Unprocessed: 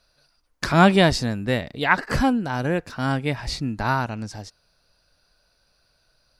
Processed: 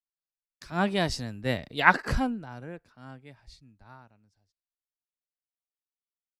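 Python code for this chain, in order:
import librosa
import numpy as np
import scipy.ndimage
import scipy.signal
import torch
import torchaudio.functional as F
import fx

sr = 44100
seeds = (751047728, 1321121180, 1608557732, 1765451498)

y = fx.doppler_pass(x, sr, speed_mps=9, closest_m=3.2, pass_at_s=1.75)
y = fx.band_widen(y, sr, depth_pct=70)
y = y * librosa.db_to_amplitude(-4.5)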